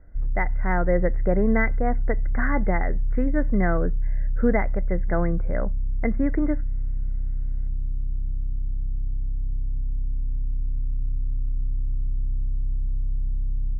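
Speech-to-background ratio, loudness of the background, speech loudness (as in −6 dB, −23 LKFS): 3.5 dB, −30.0 LKFS, −26.5 LKFS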